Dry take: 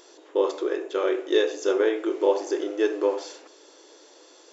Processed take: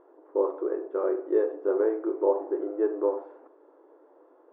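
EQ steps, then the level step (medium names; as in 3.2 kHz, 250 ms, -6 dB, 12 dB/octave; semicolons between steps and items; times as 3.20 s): low-pass 1.2 kHz 24 dB/octave; -2.5 dB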